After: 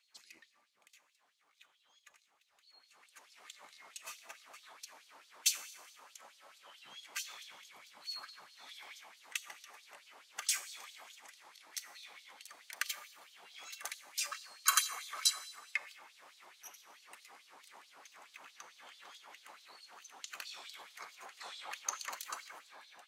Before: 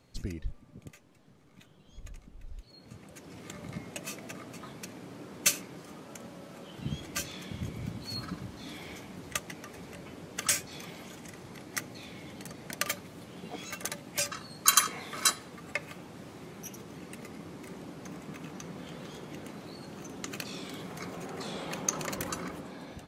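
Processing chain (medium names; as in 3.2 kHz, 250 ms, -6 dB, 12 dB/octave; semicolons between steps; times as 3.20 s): Schroeder reverb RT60 1.2 s, combs from 28 ms, DRR 12.5 dB; LFO high-pass sine 4.6 Hz 820–4200 Hz; trim -8 dB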